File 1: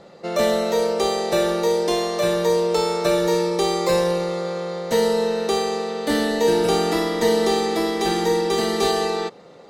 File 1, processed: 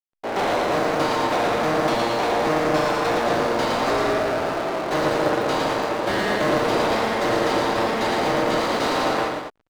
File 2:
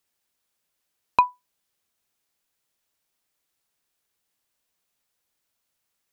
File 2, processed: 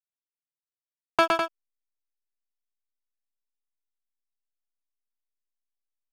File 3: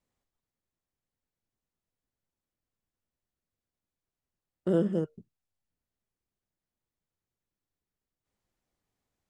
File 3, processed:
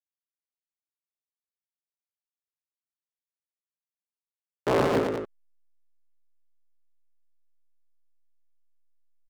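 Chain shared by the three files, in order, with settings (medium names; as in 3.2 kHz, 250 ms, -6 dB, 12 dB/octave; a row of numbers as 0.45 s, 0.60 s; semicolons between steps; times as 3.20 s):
cycle switcher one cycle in 3, inverted; hysteresis with a dead band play -29.5 dBFS; overdrive pedal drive 25 dB, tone 2.8 kHz, clips at -4.5 dBFS; loudspeakers at several distances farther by 39 m -4 dB, 70 m -7 dB; peak normalisation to -12 dBFS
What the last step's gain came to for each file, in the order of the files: -11.0 dB, -7.0 dB, -6.5 dB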